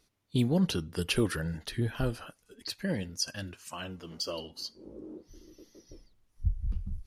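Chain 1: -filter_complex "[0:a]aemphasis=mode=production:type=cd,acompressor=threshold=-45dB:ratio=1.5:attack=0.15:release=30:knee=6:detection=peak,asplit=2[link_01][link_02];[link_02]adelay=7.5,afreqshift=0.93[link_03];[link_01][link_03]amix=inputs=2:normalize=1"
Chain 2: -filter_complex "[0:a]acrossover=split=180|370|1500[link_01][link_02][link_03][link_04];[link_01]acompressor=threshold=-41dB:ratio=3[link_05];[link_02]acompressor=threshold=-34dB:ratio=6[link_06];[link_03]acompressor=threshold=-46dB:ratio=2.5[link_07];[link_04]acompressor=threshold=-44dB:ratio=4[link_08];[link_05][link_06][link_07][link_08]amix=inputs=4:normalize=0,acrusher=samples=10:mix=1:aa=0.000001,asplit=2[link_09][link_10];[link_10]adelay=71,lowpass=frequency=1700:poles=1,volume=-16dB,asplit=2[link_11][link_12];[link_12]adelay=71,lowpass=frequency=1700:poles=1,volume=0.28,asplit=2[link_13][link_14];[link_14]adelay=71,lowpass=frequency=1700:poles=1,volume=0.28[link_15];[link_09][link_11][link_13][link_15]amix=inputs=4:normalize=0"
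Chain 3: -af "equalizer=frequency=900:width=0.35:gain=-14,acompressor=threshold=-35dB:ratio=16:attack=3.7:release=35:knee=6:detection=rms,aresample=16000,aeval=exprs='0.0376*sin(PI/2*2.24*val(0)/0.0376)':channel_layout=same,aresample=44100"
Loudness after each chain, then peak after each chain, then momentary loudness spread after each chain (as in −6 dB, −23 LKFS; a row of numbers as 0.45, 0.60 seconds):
−43.5, −39.5, −36.0 LKFS; −26.0, −19.5, −25.0 dBFS; 17, 19, 16 LU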